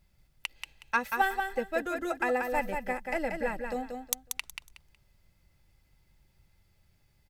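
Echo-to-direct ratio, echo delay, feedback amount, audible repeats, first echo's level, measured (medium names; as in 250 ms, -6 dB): -5.0 dB, 184 ms, 24%, 3, -5.5 dB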